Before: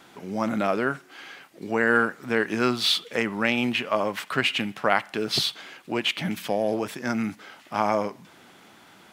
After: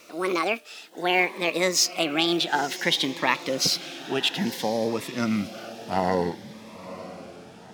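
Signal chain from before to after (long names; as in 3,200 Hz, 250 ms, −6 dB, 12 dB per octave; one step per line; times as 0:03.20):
gliding playback speed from 173% → 63%
feedback delay with all-pass diffusion 972 ms, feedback 42%, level −14.5 dB
phaser whose notches keep moving one way rising 0.58 Hz
level +2 dB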